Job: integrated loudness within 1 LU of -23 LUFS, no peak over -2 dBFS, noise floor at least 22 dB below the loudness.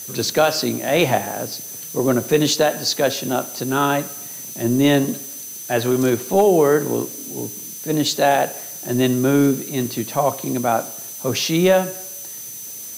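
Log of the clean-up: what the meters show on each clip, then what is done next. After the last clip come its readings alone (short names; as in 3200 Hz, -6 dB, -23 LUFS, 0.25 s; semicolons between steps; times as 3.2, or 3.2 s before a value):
steady tone 6100 Hz; tone level -35 dBFS; noise floor -34 dBFS; noise floor target -42 dBFS; loudness -19.5 LUFS; peak -4.5 dBFS; loudness target -23.0 LUFS
-> notch 6100 Hz, Q 30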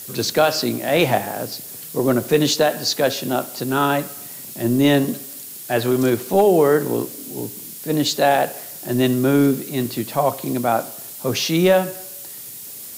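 steady tone none; noise floor -36 dBFS; noise floor target -42 dBFS
-> noise print and reduce 6 dB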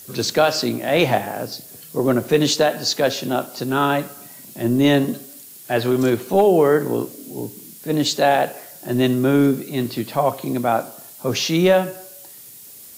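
noise floor -41 dBFS; noise floor target -42 dBFS
-> noise print and reduce 6 dB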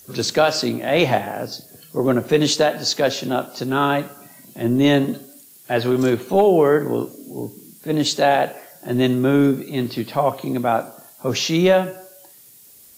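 noise floor -47 dBFS; loudness -19.5 LUFS; peak -5.0 dBFS; loudness target -23.0 LUFS
-> gain -3.5 dB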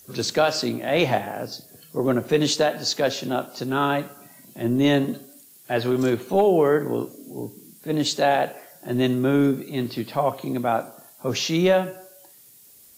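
loudness -23.0 LUFS; peak -8.5 dBFS; noise floor -51 dBFS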